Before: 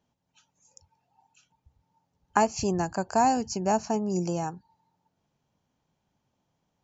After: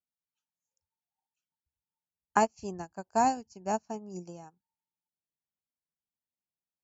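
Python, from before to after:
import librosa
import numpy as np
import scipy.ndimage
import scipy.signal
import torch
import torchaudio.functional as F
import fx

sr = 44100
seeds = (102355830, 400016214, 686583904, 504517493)

y = fx.peak_eq(x, sr, hz=120.0, db=-5.5, octaves=0.39)
y = fx.upward_expand(y, sr, threshold_db=-38.0, expansion=2.5)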